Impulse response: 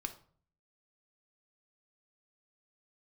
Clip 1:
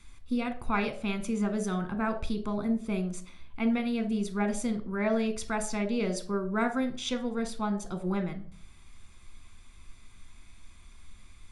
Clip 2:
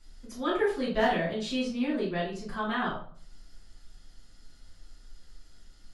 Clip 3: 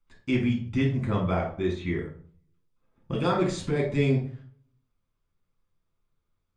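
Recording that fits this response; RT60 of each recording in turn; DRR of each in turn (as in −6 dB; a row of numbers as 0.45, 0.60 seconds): 1; 0.50, 0.50, 0.50 seconds; 7.0, −9.0, −1.5 decibels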